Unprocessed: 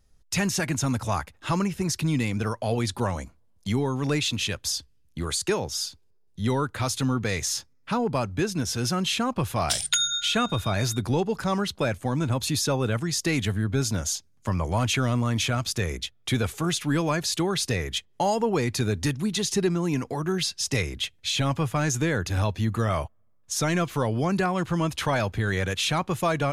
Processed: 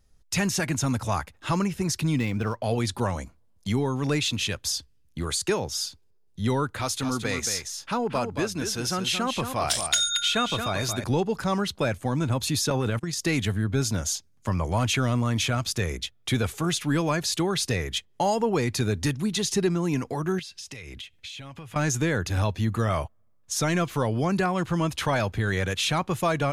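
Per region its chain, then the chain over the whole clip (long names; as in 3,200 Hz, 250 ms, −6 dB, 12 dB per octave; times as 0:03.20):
0:02.16–0:02.64: running median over 5 samples + linearly interpolated sample-rate reduction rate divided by 3×
0:06.80–0:11.04: parametric band 120 Hz −6.5 dB 1.9 octaves + single-tap delay 225 ms −7.5 dB
0:12.70–0:13.20: noise gate −28 dBFS, range −30 dB + transient designer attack −12 dB, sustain +6 dB
0:20.39–0:21.76: parametric band 2,600 Hz +6 dB 1.1 octaves + downward compressor 16 to 1, threshold −36 dBFS
whole clip: no processing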